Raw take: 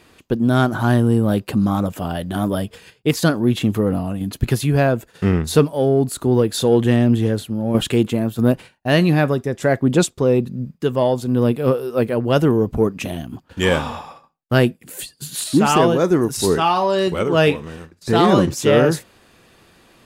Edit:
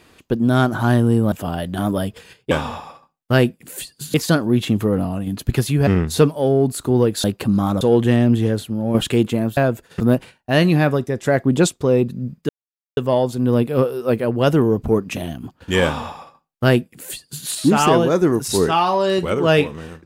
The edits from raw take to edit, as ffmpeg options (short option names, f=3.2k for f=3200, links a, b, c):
-filter_complex "[0:a]asplit=10[a][b][c][d][e][f][g][h][i][j];[a]atrim=end=1.322[k];[b]atrim=start=1.888:end=3.082[l];[c]atrim=start=13.718:end=15.352[m];[d]atrim=start=3.078:end=4.812[n];[e]atrim=start=5.238:end=6.612[o];[f]atrim=start=1.318:end=1.892[p];[g]atrim=start=6.608:end=8.372[q];[h]atrim=start=4.808:end=5.242[r];[i]atrim=start=8.368:end=10.86,asetpts=PTS-STARTPTS,afade=t=out:st=2.488:d=0.004:c=hsin,apad=pad_dur=0.48[s];[j]atrim=start=10.86,asetpts=PTS-STARTPTS,afade=t=in:d=0.004:c=hsin[t];[k][l]acrossfade=d=0.004:c1=hsin:c2=hsin[u];[u][m]acrossfade=d=0.004:c1=hsin:c2=hsin[v];[v][n]acrossfade=d=0.004:c1=hsin:c2=hsin[w];[w][o]acrossfade=d=0.004:c1=hsin:c2=hsin[x];[x][p]acrossfade=d=0.004:c1=hsin:c2=hsin[y];[y][q]acrossfade=d=0.004:c1=hsin:c2=hsin[z];[z][r]acrossfade=d=0.004:c1=hsin:c2=hsin[aa];[s][t]concat=n=2:v=0:a=1[ab];[aa][ab]acrossfade=d=0.004:c1=hsin:c2=hsin"